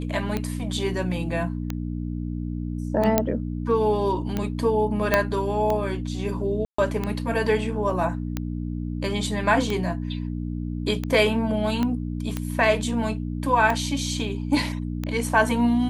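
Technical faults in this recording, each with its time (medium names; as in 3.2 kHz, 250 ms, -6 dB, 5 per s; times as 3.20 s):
hum 60 Hz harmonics 5 -29 dBFS
tick 45 rpm -13 dBFS
3.18 s: pop -4 dBFS
5.14 s: pop -4 dBFS
6.65–6.78 s: dropout 134 ms
11.83 s: pop -13 dBFS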